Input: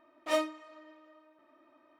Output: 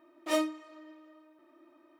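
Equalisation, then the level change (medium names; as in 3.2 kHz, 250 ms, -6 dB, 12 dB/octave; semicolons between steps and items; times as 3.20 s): high-pass 48 Hz; peaking EQ 340 Hz +12 dB 0.34 oct; treble shelf 5.3 kHz +7.5 dB; -1.5 dB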